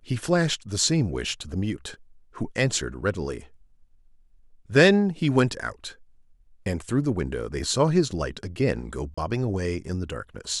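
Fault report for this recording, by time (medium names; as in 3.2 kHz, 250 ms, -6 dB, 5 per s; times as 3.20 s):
9.14–9.18 s: dropout 35 ms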